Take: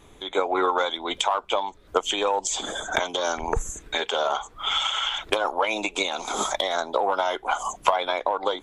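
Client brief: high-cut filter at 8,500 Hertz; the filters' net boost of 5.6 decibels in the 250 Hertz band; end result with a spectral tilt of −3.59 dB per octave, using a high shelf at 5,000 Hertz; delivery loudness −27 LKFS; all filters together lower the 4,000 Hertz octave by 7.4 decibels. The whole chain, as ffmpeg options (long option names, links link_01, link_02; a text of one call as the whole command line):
ffmpeg -i in.wav -af "lowpass=8500,equalizer=frequency=250:width_type=o:gain=8,equalizer=frequency=4000:width_type=o:gain=-7,highshelf=frequency=5000:gain=-6.5,volume=-1dB" out.wav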